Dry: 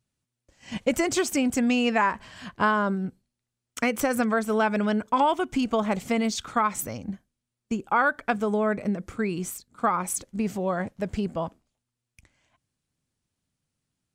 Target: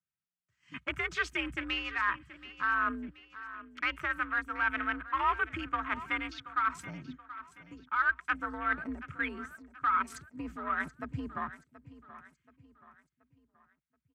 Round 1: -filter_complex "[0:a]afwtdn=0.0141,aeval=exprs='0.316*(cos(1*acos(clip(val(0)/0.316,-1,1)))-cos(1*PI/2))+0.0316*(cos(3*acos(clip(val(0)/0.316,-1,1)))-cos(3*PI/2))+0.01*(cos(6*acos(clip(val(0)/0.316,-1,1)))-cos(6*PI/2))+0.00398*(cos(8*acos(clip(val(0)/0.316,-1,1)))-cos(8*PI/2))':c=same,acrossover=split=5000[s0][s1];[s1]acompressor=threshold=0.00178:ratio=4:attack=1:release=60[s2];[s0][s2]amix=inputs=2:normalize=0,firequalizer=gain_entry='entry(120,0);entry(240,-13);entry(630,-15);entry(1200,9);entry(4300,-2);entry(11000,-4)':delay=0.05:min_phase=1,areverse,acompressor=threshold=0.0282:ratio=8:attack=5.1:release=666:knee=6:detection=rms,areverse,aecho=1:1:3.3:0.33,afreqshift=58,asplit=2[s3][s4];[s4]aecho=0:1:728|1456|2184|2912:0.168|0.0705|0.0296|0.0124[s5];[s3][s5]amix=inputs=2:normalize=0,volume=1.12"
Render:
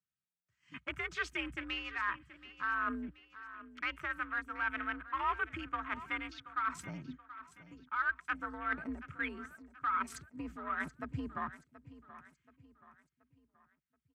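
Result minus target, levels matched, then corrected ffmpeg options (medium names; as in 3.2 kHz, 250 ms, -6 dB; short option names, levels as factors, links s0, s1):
compression: peak gain reduction +5 dB
-filter_complex "[0:a]afwtdn=0.0141,aeval=exprs='0.316*(cos(1*acos(clip(val(0)/0.316,-1,1)))-cos(1*PI/2))+0.0316*(cos(3*acos(clip(val(0)/0.316,-1,1)))-cos(3*PI/2))+0.01*(cos(6*acos(clip(val(0)/0.316,-1,1)))-cos(6*PI/2))+0.00398*(cos(8*acos(clip(val(0)/0.316,-1,1)))-cos(8*PI/2))':c=same,acrossover=split=5000[s0][s1];[s1]acompressor=threshold=0.00178:ratio=4:attack=1:release=60[s2];[s0][s2]amix=inputs=2:normalize=0,firequalizer=gain_entry='entry(120,0);entry(240,-13);entry(630,-15);entry(1200,9);entry(4300,-2);entry(11000,-4)':delay=0.05:min_phase=1,areverse,acompressor=threshold=0.0562:ratio=8:attack=5.1:release=666:knee=6:detection=rms,areverse,aecho=1:1:3.3:0.33,afreqshift=58,asplit=2[s3][s4];[s4]aecho=0:1:728|1456|2184|2912:0.168|0.0705|0.0296|0.0124[s5];[s3][s5]amix=inputs=2:normalize=0,volume=1.12"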